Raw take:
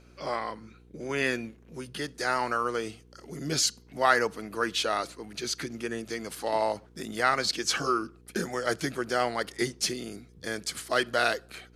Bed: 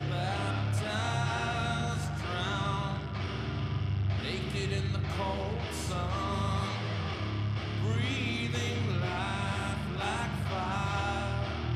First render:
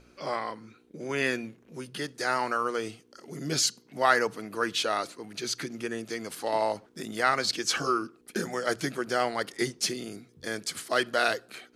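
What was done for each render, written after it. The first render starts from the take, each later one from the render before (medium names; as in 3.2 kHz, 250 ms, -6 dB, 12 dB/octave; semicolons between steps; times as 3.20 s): de-hum 60 Hz, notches 3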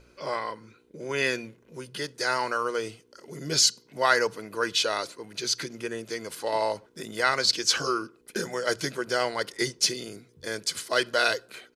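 comb 2 ms, depth 37%; dynamic bell 5 kHz, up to +6 dB, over -43 dBFS, Q 1.1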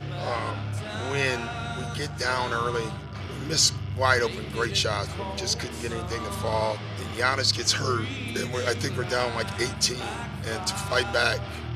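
add bed -1 dB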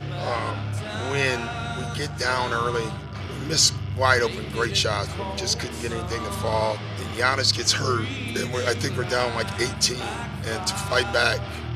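trim +2.5 dB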